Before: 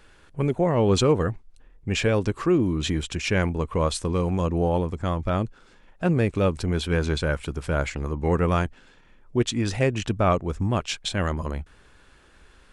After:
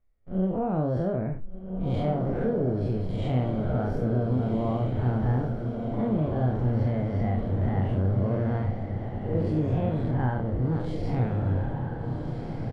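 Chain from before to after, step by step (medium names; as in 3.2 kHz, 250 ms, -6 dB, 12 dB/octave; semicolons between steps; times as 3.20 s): spectral blur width 133 ms; low-pass 1.1 kHz 6 dB/octave; gate -50 dBFS, range -27 dB; peaking EQ 98 Hz -3.5 dB 2 oct; harmonic-percussive split percussive -4 dB; tilt EQ -3 dB/octave; compression 5:1, threshold -25 dBFS, peak gain reduction 10.5 dB; pitch shift +5 st; doubling 32 ms -5.5 dB; on a send: echo that smears into a reverb 1521 ms, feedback 54%, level -5 dB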